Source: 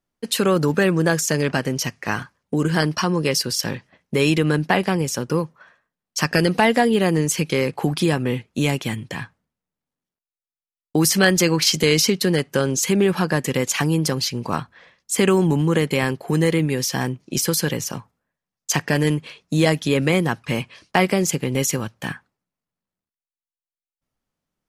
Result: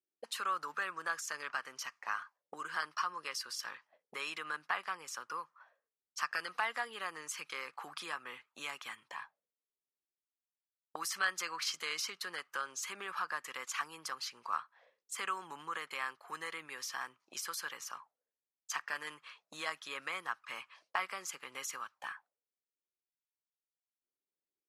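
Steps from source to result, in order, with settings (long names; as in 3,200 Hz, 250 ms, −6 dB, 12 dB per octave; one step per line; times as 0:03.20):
envelope filter 370–1,200 Hz, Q 4.6, up, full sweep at −24.5 dBFS
first difference
in parallel at −1.5 dB: downward compressor, threshold −55 dBFS, peak gain reduction 17 dB
on the sum: low-shelf EQ 270 Hz +8.5 dB
level +8 dB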